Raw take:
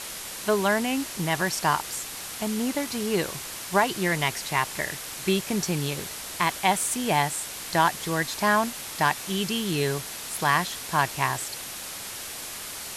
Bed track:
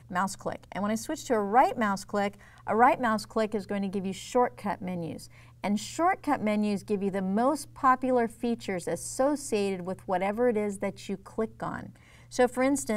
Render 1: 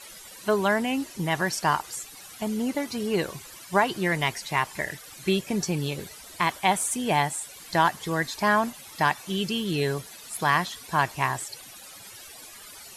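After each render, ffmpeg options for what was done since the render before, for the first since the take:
-af "afftdn=nr=14:nf=-37"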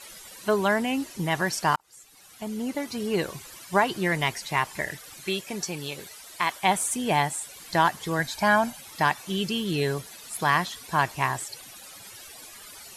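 -filter_complex "[0:a]asettb=1/sr,asplit=3[a][b][c];[a]atrim=end=5.204[d];[b]atrim=start=5.2:end=6.62,asetpts=PTS-STARTPTS,afade=t=in:d=0.004:c=qsin,afade=t=out:st=1.416:d=0.004:c=qsin,lowshelf=f=350:g=-11.5[e];[c]atrim=start=6.616[f];[d][e]acrossfade=d=0.004:c1=hsin:c2=qsin[g];[g][f]acrossfade=d=0.004:c1=qsin:c2=hsin,asettb=1/sr,asplit=3[h][i][j];[h]atrim=end=8.194[k];[i]atrim=start=8.19:end=8.8,asetpts=PTS-STARTPTS,afade=t=in:d=0.004:c=qsin,afade=t=out:st=0.606:d=0.004:c=qsin,aecho=1:1:1.3:0.52,atrim=end_sample=26901[l];[j]atrim=start=8.796[m];[k][l]acrossfade=d=0.004:c1=hsin:c2=qsin[n];[n][m]acrossfade=d=0.004:c1=qsin:c2=hsin,asplit=2[o][p];[o]atrim=end=1.76,asetpts=PTS-STARTPTS,afade=t=out:st=1.756:d=0.004:c=hsin[q];[p]atrim=start=1.76,asetpts=PTS-STARTPTS,afade=t=in:d=1.75:c=qsin[r];[q][r]concat=n=2:v=0:a=1"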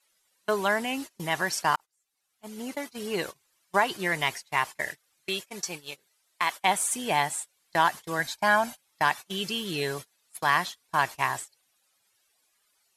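-af "agate=range=-26dB:threshold=-32dB:ratio=16:detection=peak,lowshelf=f=350:g=-10"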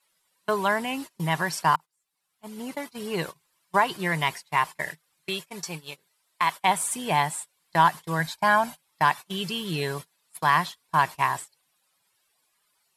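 -af "equalizer=f=160:t=o:w=0.33:g=11,equalizer=f=1k:t=o:w=0.33:g=6,equalizer=f=6.3k:t=o:w=0.33:g=-5"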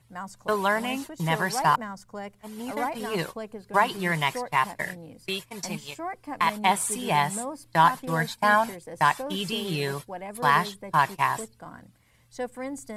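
-filter_complex "[1:a]volume=-9dB[a];[0:a][a]amix=inputs=2:normalize=0"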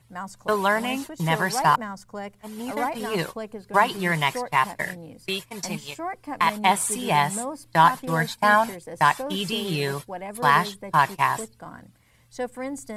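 -af "volume=2.5dB"

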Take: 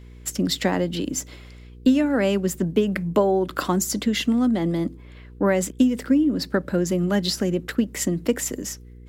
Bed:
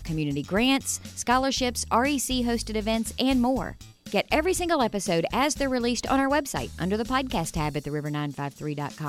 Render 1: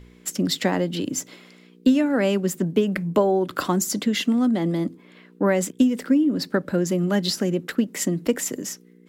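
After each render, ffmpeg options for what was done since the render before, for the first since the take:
-af "bandreject=f=60:t=h:w=4,bandreject=f=120:t=h:w=4"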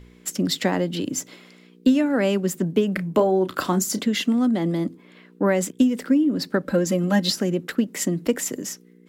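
-filter_complex "[0:a]asettb=1/sr,asplit=3[a][b][c];[a]atrim=end=2.944[d];[b]atrim=start=2.94:end=4.05,asetpts=PTS-STARTPTS,afade=t=in:d=0.004:c=qsin,afade=t=out:st=1.106:d=0.004:c=qsin,asplit=2[e][f];[f]adelay=32,volume=-11dB[g];[e][g]amix=inputs=2:normalize=0,atrim=end_sample=48951[h];[c]atrim=start=4.046[i];[d][h]acrossfade=d=0.004:c1=hsin:c2=qsin[j];[j][i]acrossfade=d=0.004:c1=qsin:c2=hsin,asettb=1/sr,asplit=3[k][l][m];[k]atrim=end=6.674[n];[l]atrim=start=6.67:end=7.32,asetpts=PTS-STARTPTS,afade=t=in:d=0.004:c=qsin,afade=t=out:st=0.646:d=0.004:c=qsin,aecho=1:1:3.8:0.88,atrim=end_sample=28665[o];[m]atrim=start=7.316[p];[n][o]acrossfade=d=0.004:c1=hsin:c2=qsin[q];[q][p]acrossfade=d=0.004:c1=qsin:c2=hsin"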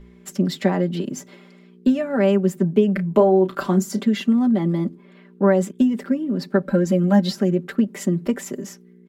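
-af "highshelf=f=2.3k:g=-11,aecho=1:1:5.1:0.76"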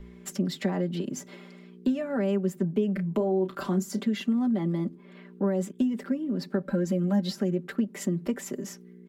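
-filter_complex "[0:a]acrossover=split=430|4800[a][b][c];[b]alimiter=limit=-20.5dB:level=0:latency=1:release=14[d];[a][d][c]amix=inputs=3:normalize=0,acompressor=threshold=-37dB:ratio=1.5"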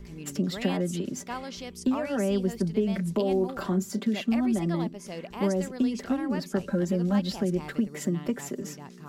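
-filter_complex "[1:a]volume=-14dB[a];[0:a][a]amix=inputs=2:normalize=0"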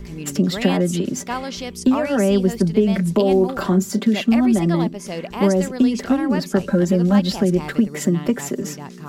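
-af "volume=9.5dB"

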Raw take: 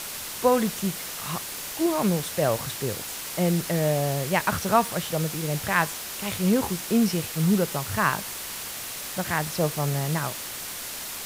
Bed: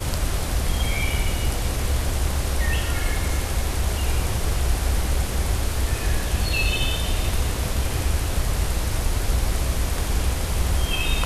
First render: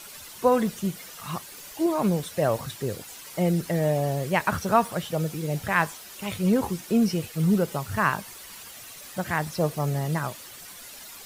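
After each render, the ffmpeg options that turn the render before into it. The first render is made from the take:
-af "afftdn=nr=11:nf=-35"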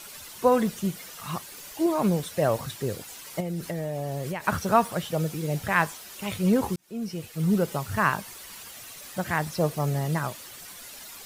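-filter_complex "[0:a]asettb=1/sr,asplit=3[a][b][c];[a]atrim=end=3.404[d];[b]atrim=start=3.4:end=4.48,asetpts=PTS-STARTPTS,afade=t=in:d=0.004:c=qsin,afade=t=out:st=1.076:d=0.004:c=qsin,acompressor=threshold=-27dB:ratio=12:attack=3.2:release=140:knee=1:detection=peak[e];[c]atrim=start=4.476[f];[d][e]acrossfade=d=0.004:c1=hsin:c2=qsin[g];[g][f]acrossfade=d=0.004:c1=qsin:c2=hsin,asplit=2[h][i];[h]atrim=end=6.76,asetpts=PTS-STARTPTS,afade=t=out:st=6.756:d=0.004:c=hsin[j];[i]atrim=start=6.76,asetpts=PTS-STARTPTS,afade=t=in:d=0.9[k];[j][k]concat=n=2:v=0:a=1"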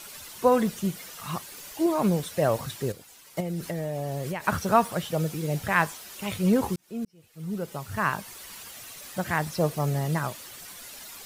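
-filter_complex "[0:a]asplit=4[a][b][c][d];[a]atrim=end=2.922[e];[b]atrim=start=2.918:end=3.372,asetpts=PTS-STARTPTS,volume=-9dB[f];[c]atrim=start=3.368:end=7.05,asetpts=PTS-STARTPTS,afade=t=out:st=3.678:d=0.004:c=hsin[g];[d]atrim=start=7.05,asetpts=PTS-STARTPTS,afade=t=in:d=1.39[h];[e][f]acrossfade=d=0.004:c1=hsin:c2=hsin[i];[g][h]concat=n=2:v=0:a=1[j];[i][j]acrossfade=d=0.004:c1=hsin:c2=hsin"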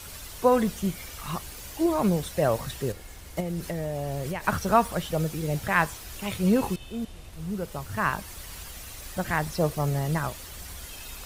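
-filter_complex "[1:a]volume=-22dB[a];[0:a][a]amix=inputs=2:normalize=0"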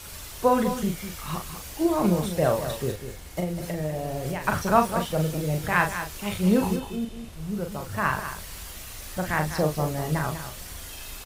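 -filter_complex "[0:a]asplit=2[a][b];[b]adelay=39,volume=-5.5dB[c];[a][c]amix=inputs=2:normalize=0,aecho=1:1:198:0.316"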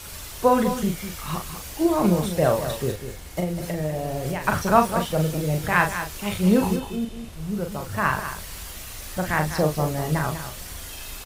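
-af "volume=2.5dB"

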